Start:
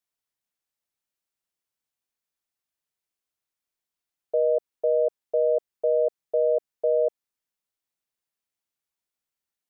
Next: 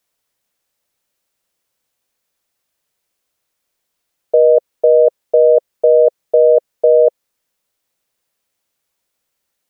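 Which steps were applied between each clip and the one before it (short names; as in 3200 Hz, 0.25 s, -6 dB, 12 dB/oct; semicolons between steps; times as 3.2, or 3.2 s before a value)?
bell 530 Hz +6 dB 0.42 oct; in parallel at -3 dB: negative-ratio compressor -24 dBFS, ratio -1; on the sum: gain +6.5 dB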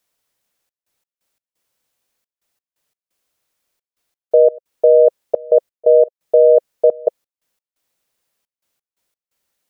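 step gate "xxxx.x.x." 87 bpm -24 dB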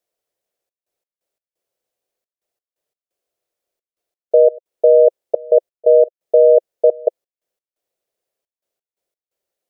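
band shelf 500 Hz +10.5 dB 1.3 oct; gain -10.5 dB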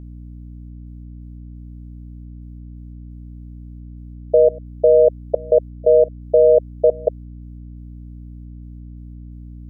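hum 60 Hz, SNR 15 dB; gain -2 dB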